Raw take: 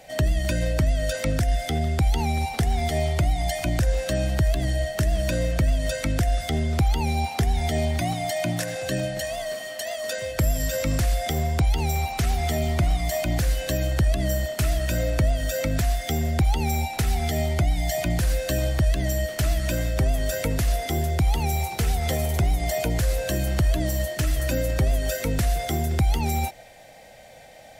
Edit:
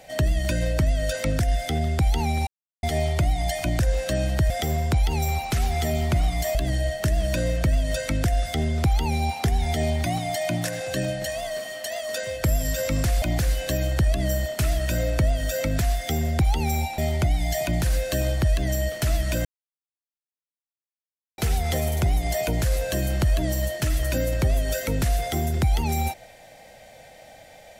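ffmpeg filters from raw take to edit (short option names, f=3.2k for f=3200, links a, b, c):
-filter_complex "[0:a]asplit=9[a][b][c][d][e][f][g][h][i];[a]atrim=end=2.47,asetpts=PTS-STARTPTS,afade=t=out:st=2.466:d=0.004:c=hsin[j];[b]atrim=start=2.47:end=2.83,asetpts=PTS-STARTPTS,volume=0[k];[c]atrim=start=2.83:end=4.502,asetpts=PTS-STARTPTS,afade=t=in:d=0.004:c=hsin[l];[d]atrim=start=11.168:end=13.222[m];[e]atrim=start=4.498:end=11.172[n];[f]atrim=start=13.218:end=16.982[o];[g]atrim=start=17.348:end=19.82,asetpts=PTS-STARTPTS,afade=t=out:st=2.468:d=0.004:c=hsin[p];[h]atrim=start=19.82:end=21.75,asetpts=PTS-STARTPTS,volume=0[q];[i]atrim=start=21.75,asetpts=PTS-STARTPTS,afade=t=in:d=0.004:c=hsin[r];[j][k][l]concat=n=3:v=0:a=1[s];[s][m]acrossfade=d=0.004:c1=hsin:c2=hsin[t];[t][n]acrossfade=d=0.004:c1=hsin:c2=hsin[u];[u][o]acrossfade=d=0.004:c1=hsin:c2=hsin[v];[p][q][r]concat=n=3:v=0:a=1[w];[v][w]acrossfade=d=0.004:c1=hsin:c2=hsin"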